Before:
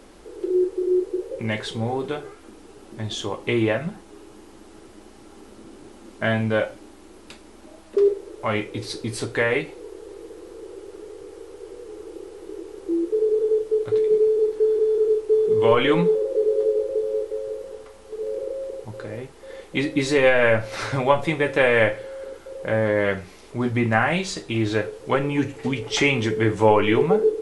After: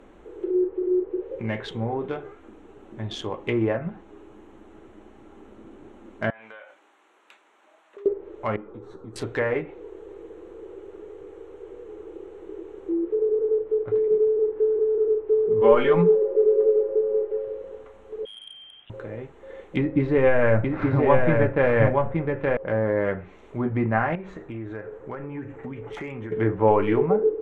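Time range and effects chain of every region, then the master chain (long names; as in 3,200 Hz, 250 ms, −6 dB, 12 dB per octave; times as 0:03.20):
0:06.30–0:08.06: high-pass filter 1,000 Hz + downward compressor 16 to 1, threshold −36 dBFS
0:08.56–0:09.16: high shelf with overshoot 1,700 Hz −9.5 dB, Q 3 + downward compressor 2.5 to 1, threshold −32 dBFS + string-ensemble chorus
0:15.61–0:17.45: parametric band 75 Hz −5.5 dB 1.5 octaves + comb filter 5 ms, depth 91%
0:18.25–0:18.90: high-pass filter 980 Hz 6 dB per octave + voice inversion scrambler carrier 3,700 Hz
0:19.76–0:22.57: bass and treble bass +7 dB, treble −5 dB + single-tap delay 873 ms −3 dB
0:24.15–0:26.32: high shelf with overshoot 2,300 Hz −8.5 dB, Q 1.5 + downward compressor 4 to 1, threshold −30 dBFS
whole clip: adaptive Wiener filter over 9 samples; treble cut that deepens with the level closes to 1,600 Hz, closed at −19.5 dBFS; level −2 dB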